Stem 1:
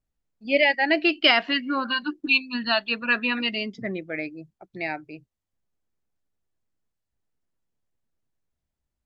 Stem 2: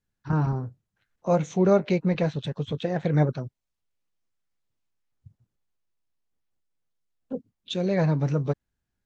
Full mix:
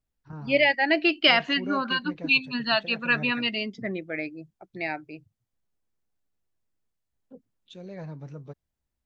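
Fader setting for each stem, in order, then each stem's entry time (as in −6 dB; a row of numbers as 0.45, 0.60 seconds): −1.0, −16.0 decibels; 0.00, 0.00 seconds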